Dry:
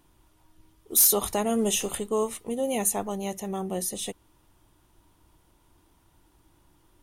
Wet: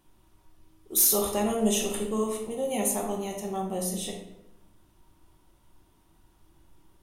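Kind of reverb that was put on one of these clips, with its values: simulated room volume 270 m³, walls mixed, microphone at 1.1 m; trim -4 dB

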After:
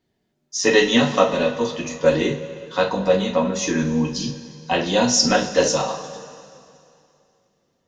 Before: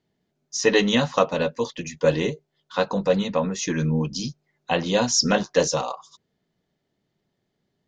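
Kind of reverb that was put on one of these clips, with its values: two-slope reverb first 0.29 s, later 2.6 s, from -18 dB, DRR -1 dB

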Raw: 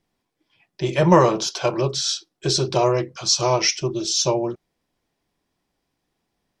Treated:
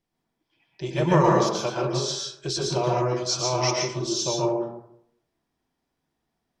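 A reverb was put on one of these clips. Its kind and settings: plate-style reverb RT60 0.73 s, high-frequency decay 0.4×, pre-delay 105 ms, DRR -3 dB; trim -8 dB

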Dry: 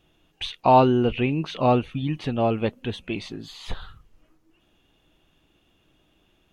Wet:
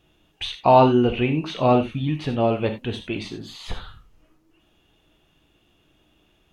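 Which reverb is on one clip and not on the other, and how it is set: gated-style reverb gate 110 ms flat, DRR 6 dB; trim +1 dB

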